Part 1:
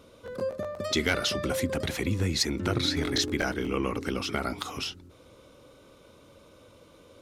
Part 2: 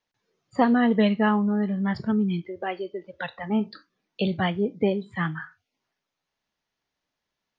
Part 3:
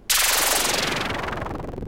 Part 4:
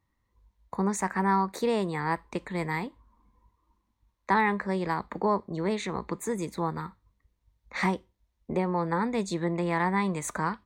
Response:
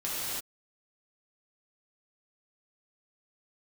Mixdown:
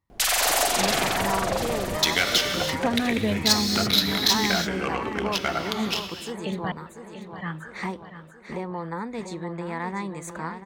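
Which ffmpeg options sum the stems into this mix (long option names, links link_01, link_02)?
-filter_complex "[0:a]tiltshelf=frequency=1300:gain=-9,adynamicsmooth=sensitivity=2:basefreq=1200,adelay=1100,volume=3dB,asplit=2[link_01][link_02];[link_02]volume=-12.5dB[link_03];[1:a]adelay=2250,volume=-5.5dB,asplit=3[link_04][link_05][link_06];[link_04]atrim=end=6.72,asetpts=PTS-STARTPTS,afade=type=out:start_time=6.716:duration=0.004:curve=hsin[link_07];[link_05]atrim=start=6.72:end=7.38,asetpts=PTS-STARTPTS,volume=0[link_08];[link_06]atrim=start=7.38,asetpts=PTS-STARTPTS,afade=type=in:duration=0.004:curve=hsin[link_09];[link_07][link_08][link_09]concat=n=3:v=0:a=1,asplit=2[link_10][link_11];[link_11]volume=-11.5dB[link_12];[2:a]adelay=100,volume=-1.5dB,asplit=2[link_13][link_14];[link_14]volume=-12dB[link_15];[3:a]volume=-4.5dB,asplit=2[link_16][link_17];[link_17]volume=-9dB[link_18];[link_01][link_13]amix=inputs=2:normalize=0,equalizer=frequency=700:width=4.7:gain=11,alimiter=limit=-11dB:level=0:latency=1:release=181,volume=0dB[link_19];[4:a]atrim=start_sample=2205[link_20];[link_03][link_20]afir=irnorm=-1:irlink=0[link_21];[link_12][link_15][link_18]amix=inputs=3:normalize=0,aecho=0:1:690|1380|2070|2760|3450|4140|4830|5520:1|0.54|0.292|0.157|0.085|0.0459|0.0248|0.0134[link_22];[link_10][link_16][link_19][link_21][link_22]amix=inputs=5:normalize=0"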